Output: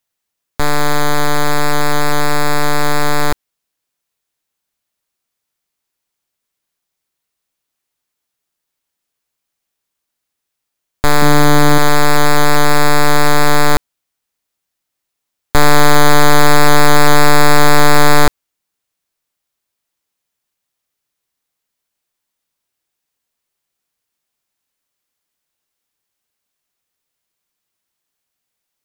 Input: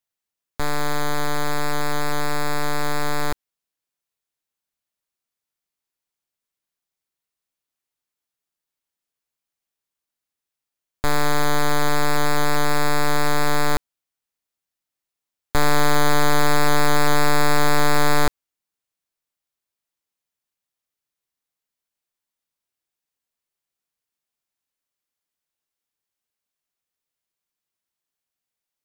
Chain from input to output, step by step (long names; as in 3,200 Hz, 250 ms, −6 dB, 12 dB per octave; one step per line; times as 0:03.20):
0:11.22–0:11.78: parametric band 210 Hz +12.5 dB 0.97 octaves
level +9 dB